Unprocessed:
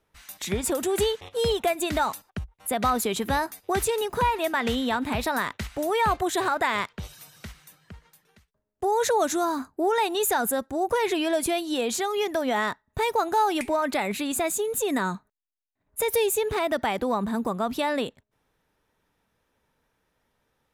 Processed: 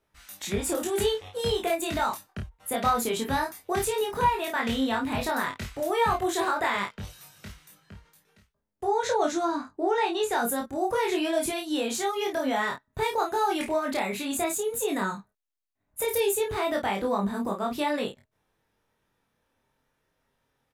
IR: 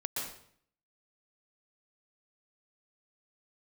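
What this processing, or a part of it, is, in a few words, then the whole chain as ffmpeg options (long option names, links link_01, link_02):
double-tracked vocal: -filter_complex "[0:a]asettb=1/sr,asplit=3[link_01][link_02][link_03];[link_01]atrim=end=8.844[link_04];[link_02]atrim=start=8.84:end=10.33,asetpts=PTS-STARTPTS,afade=type=in:duration=0.004:curve=qsin,afade=type=out:start_time=1.486:duration=0.004:curve=qsin,lowpass=5700[link_05];[link_03]atrim=start=10.326[link_06];[link_04][link_05]acrossfade=duration=0.004:curve1=hsin:curve2=qsin[link_07];[link_07][link_06]acrossfade=duration=0.004:curve1=qsin:curve2=hsin,asplit=2[link_08][link_09];[link_09]adelay=30,volume=-5dB[link_10];[link_08][link_10]amix=inputs=2:normalize=0,flanger=delay=20:depth=2.7:speed=0.12"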